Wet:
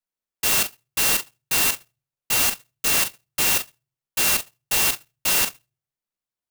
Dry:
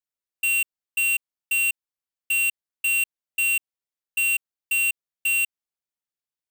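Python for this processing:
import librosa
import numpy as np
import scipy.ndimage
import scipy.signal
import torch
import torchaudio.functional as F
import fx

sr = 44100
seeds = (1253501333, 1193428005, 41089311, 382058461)

y = fx.room_shoebox(x, sr, seeds[0], volume_m3=160.0, walls='furnished', distance_m=1.0)
y = fx.clock_jitter(y, sr, seeds[1], jitter_ms=0.09)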